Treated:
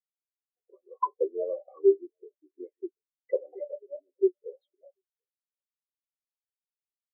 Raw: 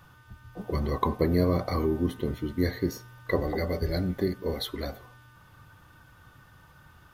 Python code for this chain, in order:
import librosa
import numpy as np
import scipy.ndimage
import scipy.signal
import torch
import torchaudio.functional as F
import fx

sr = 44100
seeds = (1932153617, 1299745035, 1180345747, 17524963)

y = 10.0 ** (-13.0 / 20.0) * np.tanh(x / 10.0 ** (-13.0 / 20.0))
y = fx.cabinet(y, sr, low_hz=400.0, low_slope=24, high_hz=3300.0, hz=(460.0, 1100.0, 1700.0), db=(-4, -4, -10))
y = y + 10.0 ** (-15.0 / 20.0) * np.pad(y, (int(740 * sr / 1000.0), 0))[:len(y)]
y = fx.spectral_expand(y, sr, expansion=4.0)
y = y * librosa.db_to_amplitude(5.0)